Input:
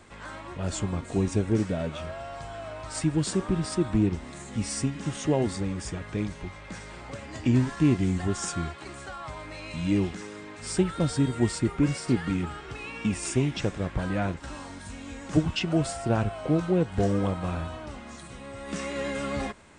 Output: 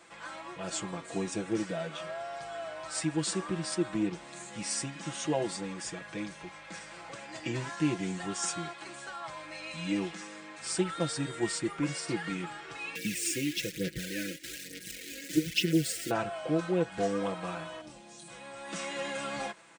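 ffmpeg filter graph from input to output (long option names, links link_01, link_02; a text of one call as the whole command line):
ffmpeg -i in.wav -filter_complex "[0:a]asettb=1/sr,asplit=3[link_01][link_02][link_03];[link_01]atrim=end=12.954[link_04];[link_02]atrim=start=12.95:end=16.11,asetpts=PTS-STARTPTS,afade=type=in:duration=0.004:curve=qsin,afade=type=out:start_time=3.156:duration=0.004:curve=qsin,acrusher=bits=7:dc=4:mix=0:aa=0.000001,aphaser=in_gain=1:out_gain=1:delay=3.7:decay=0.54:speed=1.1:type=sinusoidal,asuperstop=centerf=920:order=8:qfactor=0.75[link_05];[link_03]atrim=start=16.106[link_06];[link_04][link_05]acrossfade=duration=0.004:curve1=hsin:curve2=qsin[link_07];[link_07][link_06]acrossfade=duration=0.004:curve1=qsin:curve2=hsin,asettb=1/sr,asplit=3[link_08][link_09][link_10];[link_08]atrim=end=17.814[link_11];[link_09]atrim=start=17.81:end=18.28,asetpts=PTS-STARTPTS,afade=type=in:duration=0.004:curve=qsin,afade=type=out:start_time=0.466:duration=0.004:curve=qsin,equalizer=frequency=1400:width=0.69:gain=-14.5,asplit=2[link_12][link_13];[link_13]adelay=23,volume=-6dB[link_14];[link_12][link_14]amix=inputs=2:normalize=0,atrim=end_sample=20727[link_15];[link_10]atrim=start=18.276[link_16];[link_11][link_15]acrossfade=duration=0.004:curve1=hsin:curve2=qsin[link_17];[link_17][link_16]acrossfade=duration=0.004:curve1=qsin:curve2=hsin,highpass=frequency=590:poles=1,aecho=1:1:6:0.79,volume=-2dB" out.wav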